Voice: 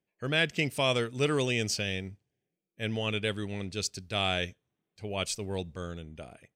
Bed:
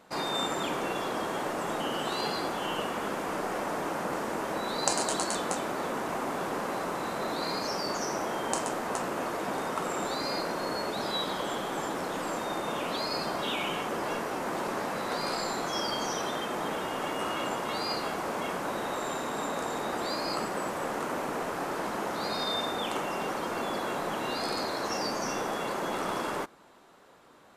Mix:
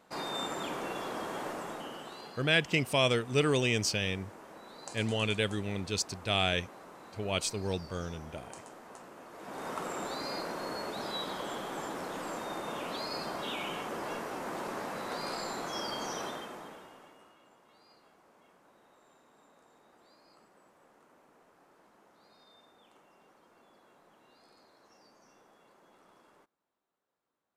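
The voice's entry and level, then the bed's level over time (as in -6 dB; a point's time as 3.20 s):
2.15 s, +0.5 dB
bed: 1.50 s -5.5 dB
2.39 s -18 dB
9.28 s -18 dB
9.69 s -5.5 dB
16.25 s -5.5 dB
17.39 s -30.5 dB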